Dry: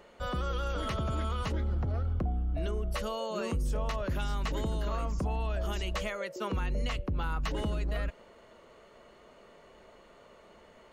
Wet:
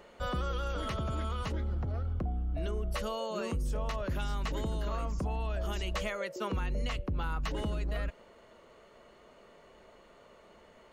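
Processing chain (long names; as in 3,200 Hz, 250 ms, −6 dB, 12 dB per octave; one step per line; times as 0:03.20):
speech leveller 0.5 s
level −1.5 dB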